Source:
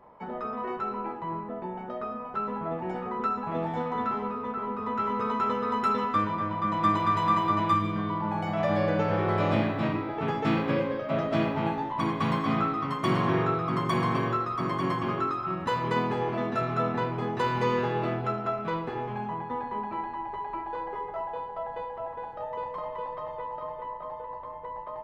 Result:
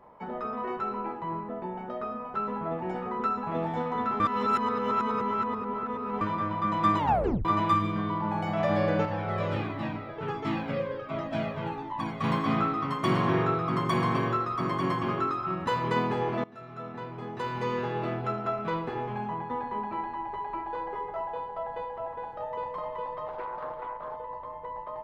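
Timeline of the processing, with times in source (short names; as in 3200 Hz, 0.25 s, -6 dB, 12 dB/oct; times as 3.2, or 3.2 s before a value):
4.2–6.21 reverse
6.98 tape stop 0.47 s
9.05–12.24 cascading flanger falling 1.4 Hz
16.44–18.63 fade in, from -22.5 dB
23.28–24.17 Doppler distortion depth 0.32 ms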